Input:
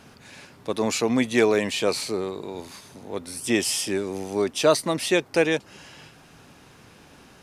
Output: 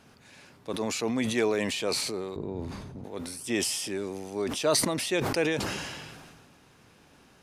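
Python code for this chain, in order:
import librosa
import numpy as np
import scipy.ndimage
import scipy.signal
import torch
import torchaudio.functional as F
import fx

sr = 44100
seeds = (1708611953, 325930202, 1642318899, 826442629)

y = fx.tilt_eq(x, sr, slope=-4.5, at=(2.36, 3.04))
y = fx.sustainer(y, sr, db_per_s=31.0)
y = y * librosa.db_to_amplitude(-7.5)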